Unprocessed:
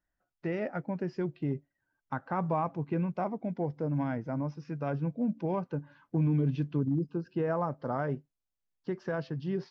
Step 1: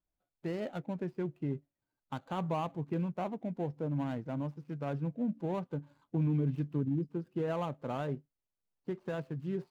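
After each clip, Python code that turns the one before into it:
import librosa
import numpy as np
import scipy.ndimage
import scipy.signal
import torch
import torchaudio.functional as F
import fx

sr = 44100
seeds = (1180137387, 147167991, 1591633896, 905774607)

y = scipy.signal.medfilt(x, 25)
y = y * 10.0 ** (-3.0 / 20.0)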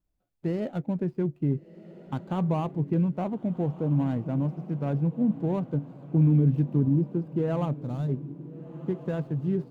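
y = fx.spec_box(x, sr, start_s=7.83, length_s=0.27, low_hz=240.0, high_hz=3400.0, gain_db=-9)
y = fx.low_shelf(y, sr, hz=450.0, db=11.5)
y = fx.echo_diffused(y, sr, ms=1394, feedback_pct=43, wet_db=-15.5)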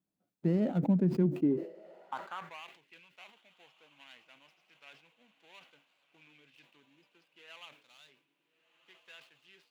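y = fx.filter_sweep_highpass(x, sr, from_hz=190.0, to_hz=2700.0, start_s=1.21, end_s=2.73, q=2.2)
y = fx.sustainer(y, sr, db_per_s=120.0)
y = y * 10.0 ** (-4.0 / 20.0)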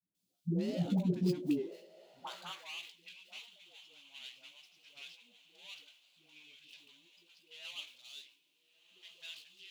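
y = fx.high_shelf_res(x, sr, hz=2400.0, db=13.5, q=1.5)
y = fx.doubler(y, sr, ms=17.0, db=-9)
y = fx.dispersion(y, sr, late='highs', ms=149.0, hz=400.0)
y = y * 10.0 ** (-5.5 / 20.0)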